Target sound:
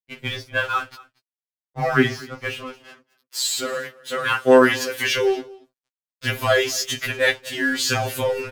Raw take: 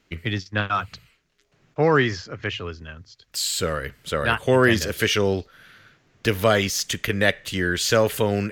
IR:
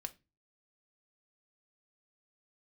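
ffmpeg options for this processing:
-filter_complex "[1:a]atrim=start_sample=2205,atrim=end_sample=6174[link_01];[0:a][link_01]afir=irnorm=-1:irlink=0,aeval=exprs='sgn(val(0))*max(abs(val(0))-0.00708,0)':channel_layout=same,asettb=1/sr,asplit=3[link_02][link_03][link_04];[link_02]atrim=end=2.784[link_05];[link_03]atrim=start=2.78:end=5.18,asetpts=PTS-STARTPTS,afade=type=in:duration=0.004:curve=qsin,afade=type=out:start_time=2.396:duration=0.004:curve=qsin,highpass=frequency=330:poles=1[link_06];[link_04]atrim=start=5.176[link_07];[link_05][link_06]acrossfade=duration=0.004:curve1=hsin:curve2=qsin[link_08];[link_08][link_07]acrossfade=duration=0.004:curve1=qsin:curve2=hsin,aecho=1:1:234:0.0794,afftfilt=real='re*2.45*eq(mod(b,6),0)':imag='im*2.45*eq(mod(b,6),0)':win_size=2048:overlap=0.75,volume=7.5dB"

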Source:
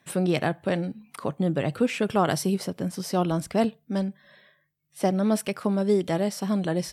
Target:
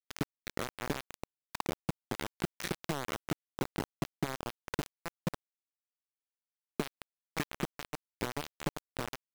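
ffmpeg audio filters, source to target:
ffmpeg -i in.wav -filter_complex "[0:a]aecho=1:1:145:0.168,acrossover=split=150[link_01][link_02];[link_02]acompressor=threshold=-28dB:ratio=4[link_03];[link_01][link_03]amix=inputs=2:normalize=0,aresample=8000,asoftclip=type=tanh:threshold=-25.5dB,aresample=44100,asetrate=32667,aresample=44100,acompressor=threshold=-37dB:ratio=12,aeval=exprs='val(0)*gte(abs(val(0)),0.0188)':channel_layout=same,volume=9.5dB" out.wav

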